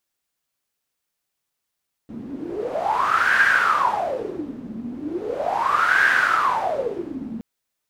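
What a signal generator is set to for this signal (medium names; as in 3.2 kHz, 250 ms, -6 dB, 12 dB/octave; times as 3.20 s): wind-like swept noise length 5.32 s, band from 230 Hz, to 1.6 kHz, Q 11, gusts 2, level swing 15 dB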